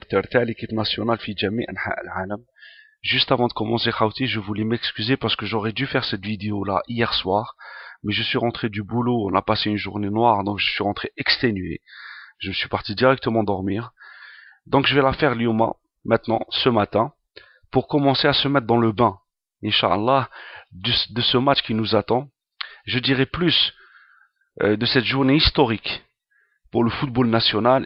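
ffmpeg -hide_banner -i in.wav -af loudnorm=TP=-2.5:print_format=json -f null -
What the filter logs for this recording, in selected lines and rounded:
"input_i" : "-20.8",
"input_tp" : "-3.6",
"input_lra" : "3.5",
"input_thresh" : "-31.5",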